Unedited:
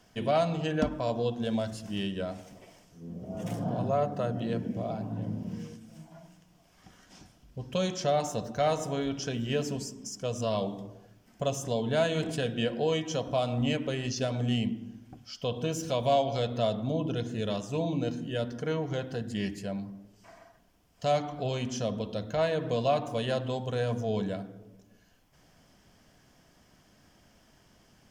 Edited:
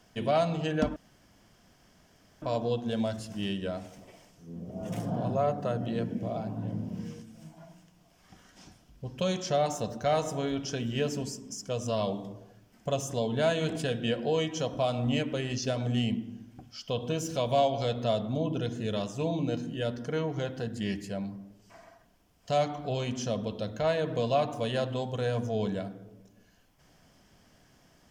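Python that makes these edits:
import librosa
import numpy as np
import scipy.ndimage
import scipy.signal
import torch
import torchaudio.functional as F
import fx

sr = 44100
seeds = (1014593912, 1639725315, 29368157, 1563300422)

y = fx.edit(x, sr, fx.insert_room_tone(at_s=0.96, length_s=1.46), tone=tone)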